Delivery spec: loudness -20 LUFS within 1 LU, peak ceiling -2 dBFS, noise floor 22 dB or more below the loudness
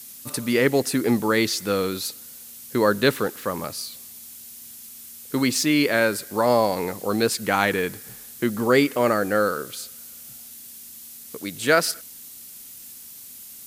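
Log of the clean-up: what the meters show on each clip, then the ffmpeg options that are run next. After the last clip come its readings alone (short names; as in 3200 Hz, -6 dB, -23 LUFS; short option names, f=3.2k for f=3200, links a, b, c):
noise floor -42 dBFS; noise floor target -45 dBFS; loudness -22.5 LUFS; peak -3.5 dBFS; loudness target -20.0 LUFS
-> -af "afftdn=nr=6:nf=-42"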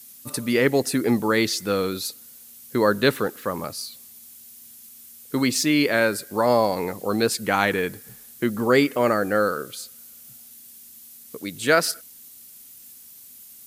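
noise floor -46 dBFS; loudness -22.5 LUFS; peak -3.5 dBFS; loudness target -20.0 LUFS
-> -af "volume=2.5dB,alimiter=limit=-2dB:level=0:latency=1"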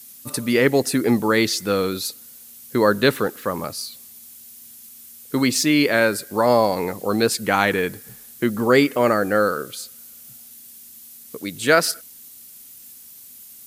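loudness -20.0 LUFS; peak -2.0 dBFS; noise floor -44 dBFS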